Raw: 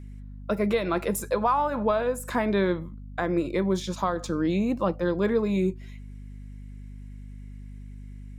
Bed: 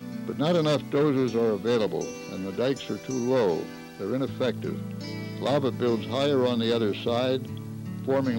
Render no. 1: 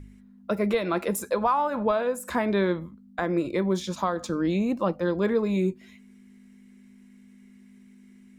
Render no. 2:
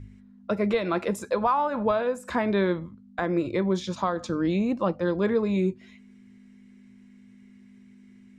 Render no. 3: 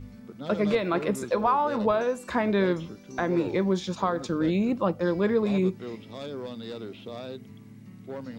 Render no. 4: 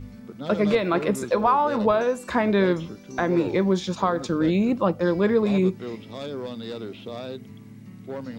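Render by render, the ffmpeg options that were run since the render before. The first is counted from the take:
-af "bandreject=f=50:t=h:w=4,bandreject=f=100:t=h:w=4,bandreject=f=150:t=h:w=4"
-af "lowpass=6300,equalizer=f=110:w=5.8:g=12.5"
-filter_complex "[1:a]volume=0.224[s0];[0:a][s0]amix=inputs=2:normalize=0"
-af "volume=1.5"

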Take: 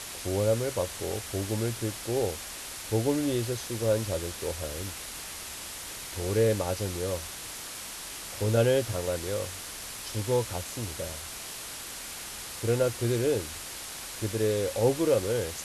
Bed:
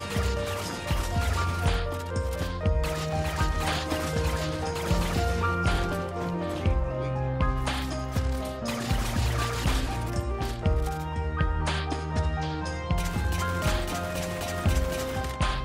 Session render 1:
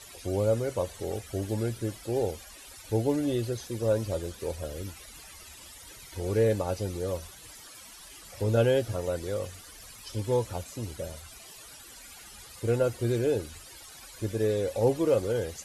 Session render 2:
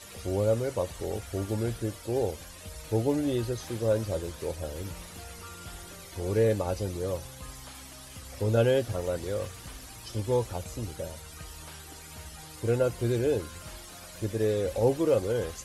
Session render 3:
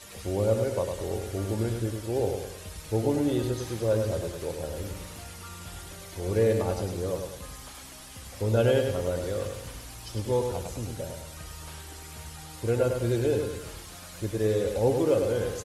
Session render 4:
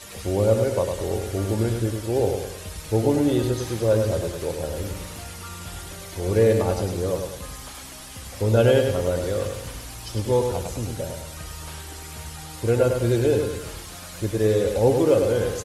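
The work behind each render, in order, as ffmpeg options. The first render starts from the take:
-af "afftdn=nr=15:nf=-40"
-filter_complex "[1:a]volume=0.106[s0];[0:a][s0]amix=inputs=2:normalize=0"
-af "aecho=1:1:102|204|306|408|510:0.531|0.234|0.103|0.0452|0.0199"
-af "volume=1.88"

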